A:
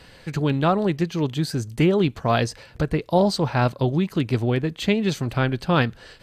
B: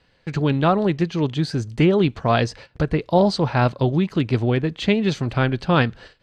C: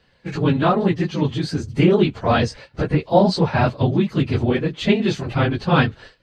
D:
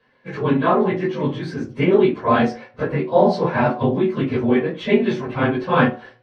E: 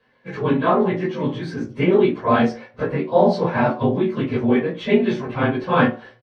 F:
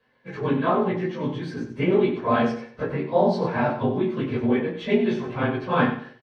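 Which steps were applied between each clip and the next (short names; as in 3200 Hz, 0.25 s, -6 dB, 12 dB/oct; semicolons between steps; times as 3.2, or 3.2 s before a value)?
LPF 5400 Hz 12 dB/oct; gate -42 dBFS, range -15 dB; gain +2 dB
phase scrambler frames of 50 ms; gain +1 dB
reverb RT60 0.40 s, pre-delay 3 ms, DRR -3 dB; gain -12.5 dB
doubler 17 ms -10.5 dB; gain -1 dB
feedback echo 92 ms, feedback 28%, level -10 dB; gain -4.5 dB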